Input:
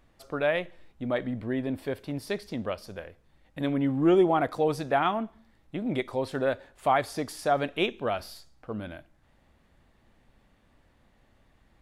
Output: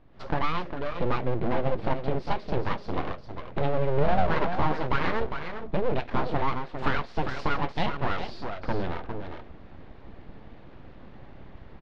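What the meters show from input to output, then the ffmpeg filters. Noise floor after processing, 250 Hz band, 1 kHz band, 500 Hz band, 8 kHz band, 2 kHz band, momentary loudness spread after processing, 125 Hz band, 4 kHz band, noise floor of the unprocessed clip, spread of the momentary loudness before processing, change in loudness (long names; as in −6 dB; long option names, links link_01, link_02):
−46 dBFS, −3.5 dB, +1.5 dB, −2.0 dB, below −10 dB, +1.5 dB, 23 LU, +5.5 dB, −0.5 dB, −65 dBFS, 16 LU, −1.0 dB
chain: -filter_complex "[0:a]acompressor=threshold=-42dB:ratio=3,tiltshelf=frequency=1200:gain=6,dynaudnorm=framelen=110:gausssize=3:maxgain=13dB,asplit=2[link_01][link_02];[link_02]aecho=0:1:404:0.422[link_03];[link_01][link_03]amix=inputs=2:normalize=0,flanger=delay=6.4:depth=5.8:regen=-52:speed=1.5:shape=triangular,aeval=exprs='abs(val(0))':channel_layout=same,lowpass=frequency=4600:width=0.5412,lowpass=frequency=4600:width=1.3066,volume=4dB"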